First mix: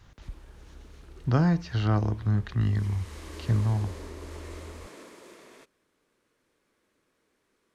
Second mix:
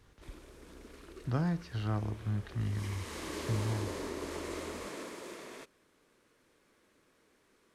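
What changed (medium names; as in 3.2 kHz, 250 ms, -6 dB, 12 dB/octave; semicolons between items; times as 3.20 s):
speech -9.0 dB; background +4.5 dB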